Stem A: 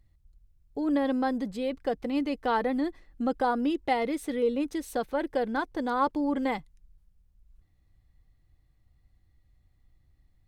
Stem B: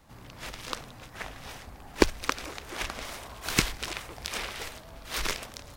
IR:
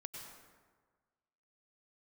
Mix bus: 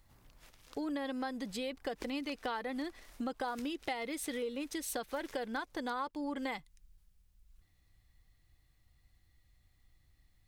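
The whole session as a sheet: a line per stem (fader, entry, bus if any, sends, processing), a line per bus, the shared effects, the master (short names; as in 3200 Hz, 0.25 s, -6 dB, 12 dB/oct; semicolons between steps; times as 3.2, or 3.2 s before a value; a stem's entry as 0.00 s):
+1.5 dB, 0.00 s, no send, tilt shelf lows -6 dB, about 1200 Hz
-14.0 dB, 0.00 s, no send, high shelf 8400 Hz +9.5 dB; auto duck -9 dB, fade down 0.50 s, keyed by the first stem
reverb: off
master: compressor 6:1, threshold -35 dBFS, peak gain reduction 14 dB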